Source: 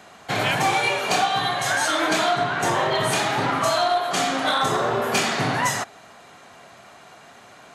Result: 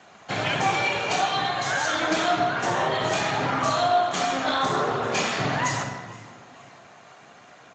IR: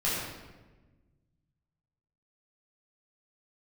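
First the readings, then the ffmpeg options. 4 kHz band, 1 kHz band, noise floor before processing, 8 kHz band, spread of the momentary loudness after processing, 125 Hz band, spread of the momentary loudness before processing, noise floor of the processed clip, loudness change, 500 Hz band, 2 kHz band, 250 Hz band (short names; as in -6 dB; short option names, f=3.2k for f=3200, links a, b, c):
-3.5 dB, -2.0 dB, -48 dBFS, -5.0 dB, 6 LU, -1.5 dB, 3 LU, -50 dBFS, -2.5 dB, -2.0 dB, -2.5 dB, -2.0 dB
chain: -filter_complex "[0:a]asplit=4[a][b][c][d];[b]adelay=472,afreqshift=64,volume=-23dB[e];[c]adelay=944,afreqshift=128,volume=-29.6dB[f];[d]adelay=1416,afreqshift=192,volume=-36.1dB[g];[a][e][f][g]amix=inputs=4:normalize=0,asplit=2[h][i];[1:a]atrim=start_sample=2205,adelay=45[j];[i][j]afir=irnorm=-1:irlink=0,volume=-14dB[k];[h][k]amix=inputs=2:normalize=0,volume=-3.5dB" -ar 16000 -c:a libspeex -b:a 17k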